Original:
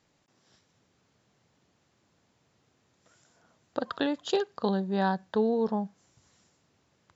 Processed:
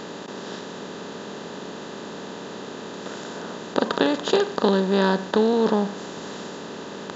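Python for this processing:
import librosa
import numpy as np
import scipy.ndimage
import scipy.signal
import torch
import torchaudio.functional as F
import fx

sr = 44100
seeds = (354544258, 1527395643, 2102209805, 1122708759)

y = fx.bin_compress(x, sr, power=0.4)
y = fx.notch(y, sr, hz=770.0, q=12.0)
y = y * 10.0 ** (4.5 / 20.0)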